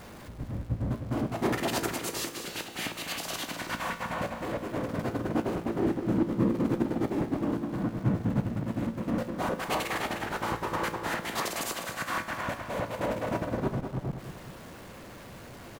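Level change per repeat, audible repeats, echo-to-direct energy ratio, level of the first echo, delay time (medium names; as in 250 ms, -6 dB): -5.5 dB, 2, -8.5 dB, -9.5 dB, 199 ms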